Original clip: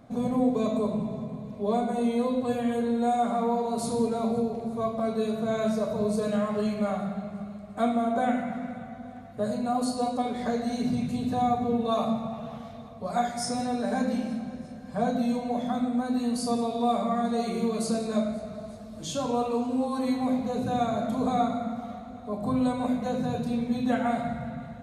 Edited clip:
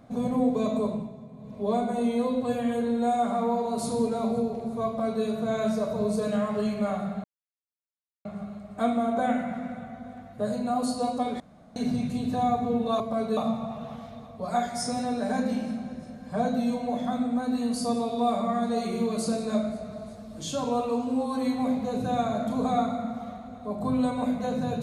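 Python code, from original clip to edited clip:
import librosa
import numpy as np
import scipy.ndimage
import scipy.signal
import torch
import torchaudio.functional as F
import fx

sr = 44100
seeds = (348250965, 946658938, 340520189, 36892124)

y = fx.edit(x, sr, fx.fade_down_up(start_s=0.87, length_s=0.74, db=-9.5, fade_s=0.26),
    fx.duplicate(start_s=4.87, length_s=0.37, to_s=11.99),
    fx.insert_silence(at_s=7.24, length_s=1.01),
    fx.room_tone_fill(start_s=10.39, length_s=0.36), tone=tone)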